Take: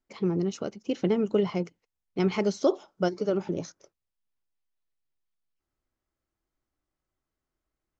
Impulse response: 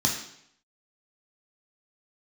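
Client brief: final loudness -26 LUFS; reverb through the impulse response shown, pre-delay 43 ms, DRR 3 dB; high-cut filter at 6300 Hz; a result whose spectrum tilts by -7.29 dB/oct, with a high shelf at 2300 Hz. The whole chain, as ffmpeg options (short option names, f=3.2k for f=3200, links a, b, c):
-filter_complex "[0:a]lowpass=6.3k,highshelf=f=2.3k:g=-3,asplit=2[a][b];[1:a]atrim=start_sample=2205,adelay=43[c];[b][c]afir=irnorm=-1:irlink=0,volume=-13.5dB[d];[a][d]amix=inputs=2:normalize=0,volume=-0.5dB"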